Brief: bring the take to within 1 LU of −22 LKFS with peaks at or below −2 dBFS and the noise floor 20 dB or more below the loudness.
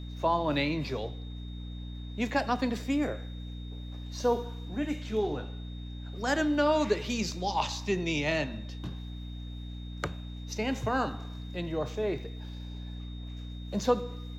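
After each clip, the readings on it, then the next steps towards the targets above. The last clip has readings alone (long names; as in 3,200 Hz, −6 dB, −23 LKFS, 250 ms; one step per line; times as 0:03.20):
mains hum 60 Hz; hum harmonics up to 300 Hz; level of the hum −37 dBFS; interfering tone 3,700 Hz; level of the tone −52 dBFS; integrated loudness −32.5 LKFS; sample peak −14.0 dBFS; target loudness −22.0 LKFS
→ mains-hum notches 60/120/180/240/300 Hz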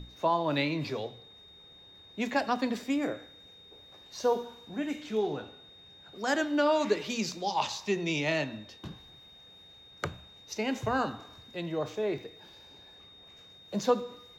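mains hum none found; interfering tone 3,700 Hz; level of the tone −52 dBFS
→ notch filter 3,700 Hz, Q 30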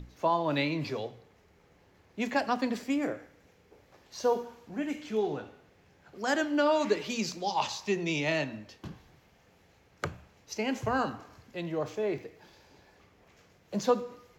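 interfering tone none found; integrated loudness −31.5 LKFS; sample peak −14.0 dBFS; target loudness −22.0 LKFS
→ level +9.5 dB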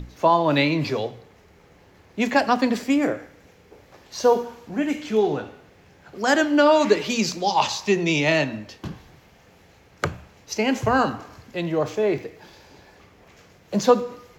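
integrated loudness −22.0 LKFS; sample peak −4.5 dBFS; background noise floor −54 dBFS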